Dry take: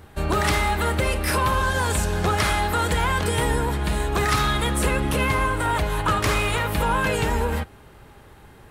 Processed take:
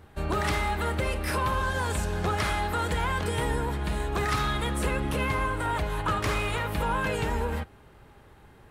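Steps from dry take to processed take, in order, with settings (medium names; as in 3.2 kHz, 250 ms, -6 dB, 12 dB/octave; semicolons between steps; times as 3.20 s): treble shelf 4.7 kHz -5 dB; trim -5.5 dB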